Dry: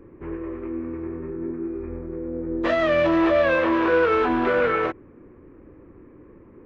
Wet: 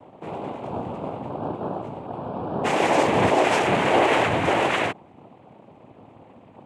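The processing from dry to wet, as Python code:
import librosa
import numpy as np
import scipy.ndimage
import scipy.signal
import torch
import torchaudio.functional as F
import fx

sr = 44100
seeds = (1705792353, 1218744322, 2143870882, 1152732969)

y = fx.noise_vocoder(x, sr, seeds[0], bands=4)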